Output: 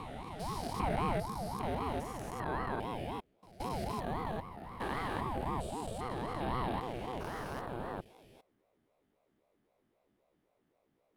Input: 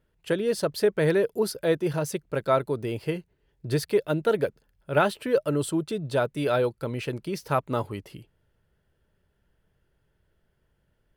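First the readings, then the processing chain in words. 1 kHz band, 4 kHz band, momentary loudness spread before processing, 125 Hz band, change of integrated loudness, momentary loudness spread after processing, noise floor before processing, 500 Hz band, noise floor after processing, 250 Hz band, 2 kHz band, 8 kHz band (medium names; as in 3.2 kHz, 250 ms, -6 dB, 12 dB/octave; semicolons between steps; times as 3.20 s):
-4.0 dB, -10.5 dB, 8 LU, -9.5 dB, -11.5 dB, 8 LU, -72 dBFS, -16.0 dB, -77 dBFS, -10.5 dB, -10.5 dB, -12.5 dB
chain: spectrogram pixelated in time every 400 ms; pre-echo 173 ms -20 dB; ring modulator with a swept carrier 430 Hz, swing 50%, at 3.8 Hz; trim -2.5 dB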